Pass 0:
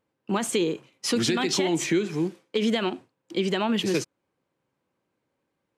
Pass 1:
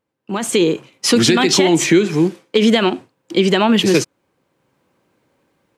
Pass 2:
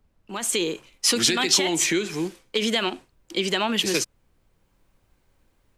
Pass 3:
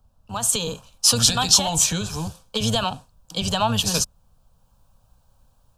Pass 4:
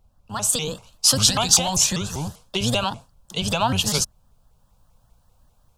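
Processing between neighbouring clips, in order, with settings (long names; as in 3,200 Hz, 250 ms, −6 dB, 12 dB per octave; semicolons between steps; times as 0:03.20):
automatic gain control gain up to 15 dB
spectral tilt +2.5 dB per octave; background noise brown −54 dBFS; level −8.5 dB
sub-octave generator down 1 octave, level −3 dB; phaser with its sweep stopped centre 850 Hz, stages 4; level +6 dB
pitch modulation by a square or saw wave saw up 5.1 Hz, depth 250 cents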